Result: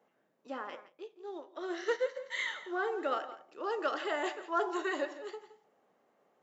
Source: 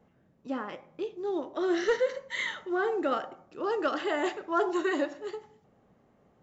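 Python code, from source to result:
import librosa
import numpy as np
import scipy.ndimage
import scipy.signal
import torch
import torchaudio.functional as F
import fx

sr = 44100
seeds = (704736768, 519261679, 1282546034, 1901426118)

p1 = scipy.signal.sosfilt(scipy.signal.butter(2, 430.0, 'highpass', fs=sr, output='sos'), x)
p2 = p1 + fx.echo_single(p1, sr, ms=169, db=-15.0, dry=0)
p3 = fx.upward_expand(p2, sr, threshold_db=-44.0, expansion=1.5, at=(0.88, 2.15), fade=0.02)
y = F.gain(torch.from_numpy(p3), -3.0).numpy()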